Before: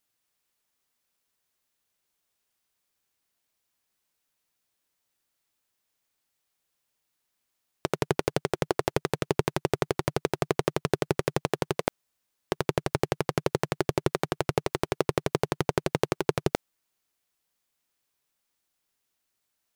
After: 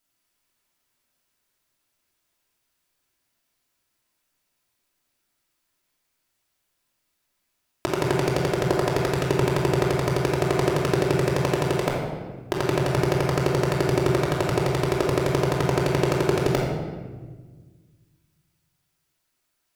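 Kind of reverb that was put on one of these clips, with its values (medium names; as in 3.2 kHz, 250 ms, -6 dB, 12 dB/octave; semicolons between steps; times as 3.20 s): simulated room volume 1300 m³, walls mixed, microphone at 2.9 m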